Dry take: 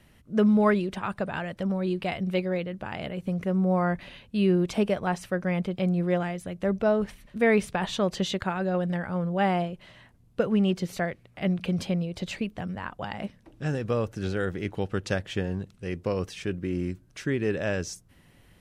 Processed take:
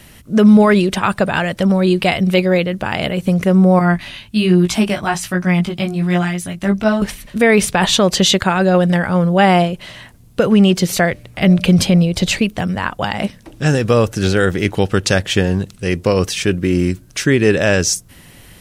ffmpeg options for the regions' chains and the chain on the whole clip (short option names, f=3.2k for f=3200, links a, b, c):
-filter_complex "[0:a]asettb=1/sr,asplit=3[a][b][c];[a]atrim=end=3.794[d];[b]atrim=start=3.79:end=7.02,asetpts=PTS-STARTPTS,afade=t=in:d=0.004:c=qsin,afade=t=out:st=3.226:d=0.004:c=qsin,equalizer=f=490:w=3.5:g=-15,flanger=delay=16.5:depth=3.1:speed=1.2[e];[c]atrim=start=7.016[f];[d][e]acrossfade=d=0.004:c1=hsin:c2=qsin[g];[g][f]acrossfade=d=0.004:c1=qsin:c2=hsin,asettb=1/sr,asplit=3[h][i][j];[h]atrim=end=11.114[k];[i]atrim=start=11.11:end=12.39,asetpts=PTS-STARTPTS,afade=t=in:d=0.004:c=qsin,afade=t=out:st=1.276:d=0.004:c=qsin,lowshelf=f=120:g=8,bandreject=f=148.1:t=h:w=4,bandreject=f=296.2:t=h:w=4,bandreject=f=444.3:t=h:w=4,bandreject=f=592.4:t=h:w=4,bandreject=f=740.5:t=h:w=4,bandreject=f=888.6:t=h:w=4[l];[j]atrim=start=12.386[m];[k][l]acrossfade=d=0.004:c1=hsin:c2=qsin[n];[n][m]acrossfade=d=0.004:c1=qsin:c2=hsin,highshelf=f=3.5k:g=10,alimiter=level_in=15.5dB:limit=-1dB:release=50:level=0:latency=1,volume=-1.5dB"